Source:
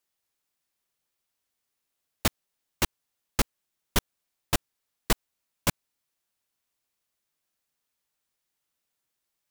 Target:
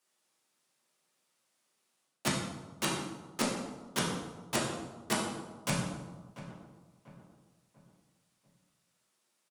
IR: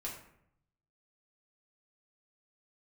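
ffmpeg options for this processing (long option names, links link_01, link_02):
-filter_complex "[0:a]highpass=frequency=150:width=0.5412,highpass=frequency=150:width=1.3066,areverse,acompressor=threshold=-34dB:ratio=6,areverse,asplit=2[link_01][link_02];[link_02]adelay=691,lowpass=frequency=1600:poles=1,volume=-13dB,asplit=2[link_03][link_04];[link_04]adelay=691,lowpass=frequency=1600:poles=1,volume=0.41,asplit=2[link_05][link_06];[link_06]adelay=691,lowpass=frequency=1600:poles=1,volume=0.41,asplit=2[link_07][link_08];[link_08]adelay=691,lowpass=frequency=1600:poles=1,volume=0.41[link_09];[link_01][link_03][link_05][link_07][link_09]amix=inputs=5:normalize=0[link_10];[1:a]atrim=start_sample=2205,afade=type=out:start_time=0.37:duration=0.01,atrim=end_sample=16758,asetrate=22491,aresample=44100[link_11];[link_10][link_11]afir=irnorm=-1:irlink=0,volume=4dB"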